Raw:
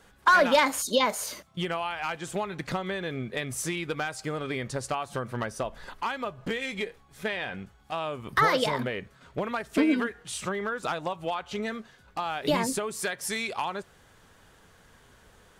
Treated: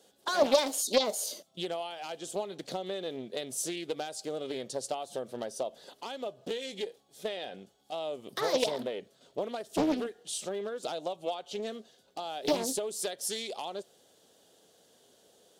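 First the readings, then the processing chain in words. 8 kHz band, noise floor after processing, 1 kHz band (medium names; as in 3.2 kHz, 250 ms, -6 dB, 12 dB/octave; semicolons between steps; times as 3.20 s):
-0.5 dB, -66 dBFS, -9.0 dB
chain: high-pass 340 Hz 12 dB/octave; high-order bell 1.5 kHz -15.5 dB; loudspeaker Doppler distortion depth 0.44 ms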